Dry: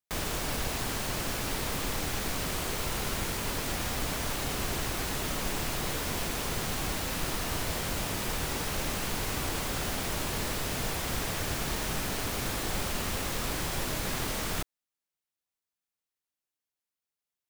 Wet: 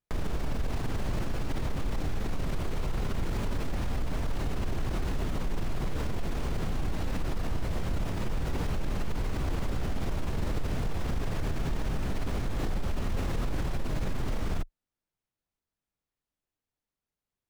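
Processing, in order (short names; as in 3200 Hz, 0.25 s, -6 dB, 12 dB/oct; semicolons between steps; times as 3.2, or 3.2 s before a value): tracing distortion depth 0.071 ms; tilt -3 dB/oct; limiter -25 dBFS, peak gain reduction 15.5 dB; gain +2.5 dB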